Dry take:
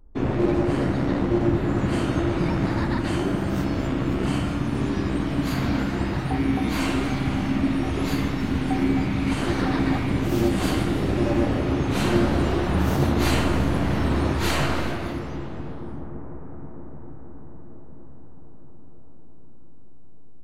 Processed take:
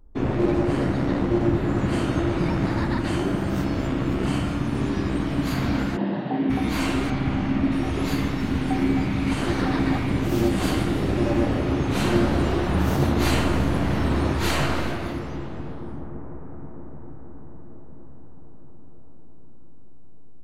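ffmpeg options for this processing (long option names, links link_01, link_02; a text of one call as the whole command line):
ffmpeg -i in.wav -filter_complex "[0:a]asplit=3[link_01][link_02][link_03];[link_01]afade=type=out:start_time=5.96:duration=0.02[link_04];[link_02]highpass=frequency=170:width=0.5412,highpass=frequency=170:width=1.3066,equalizer=frequency=200:width_type=q:width=4:gain=6,equalizer=frequency=600:width_type=q:width=4:gain=6,equalizer=frequency=1300:width_type=q:width=4:gain=-9,equalizer=frequency=2300:width_type=q:width=4:gain=-10,lowpass=frequency=3400:width=0.5412,lowpass=frequency=3400:width=1.3066,afade=type=in:start_time=5.96:duration=0.02,afade=type=out:start_time=6.49:duration=0.02[link_05];[link_03]afade=type=in:start_time=6.49:duration=0.02[link_06];[link_04][link_05][link_06]amix=inputs=3:normalize=0,asettb=1/sr,asplit=3[link_07][link_08][link_09];[link_07]atrim=end=7.104[link_10];[link_08]atrim=start=7.1:end=7.72,asetpts=PTS-STARTPTS,afade=type=in:duration=0.004:curve=qsin,afade=type=out:start_time=0.616:duration=0.004:curve=qsin,aemphasis=mode=reproduction:type=50fm[link_11];[link_09]atrim=start=7.716[link_12];[link_10][link_11]acrossfade=duration=0.004:curve1=hsin:curve2=qsin[link_13];[link_13][link_12]acrossfade=duration=0.004:curve1=qsin:curve2=hsin" out.wav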